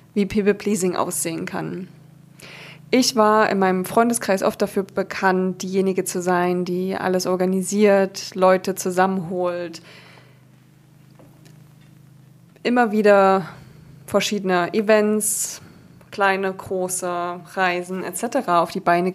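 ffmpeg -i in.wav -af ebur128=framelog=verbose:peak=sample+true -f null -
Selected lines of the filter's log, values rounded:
Integrated loudness:
  I:         -20.2 LUFS
  Threshold: -31.3 LUFS
Loudness range:
  LRA:         5.9 LU
  Threshold: -41.2 LUFS
  LRA low:   -25.2 LUFS
  LRA high:  -19.3 LUFS
Sample peak:
  Peak:       -2.4 dBFS
True peak:
  Peak:       -2.4 dBFS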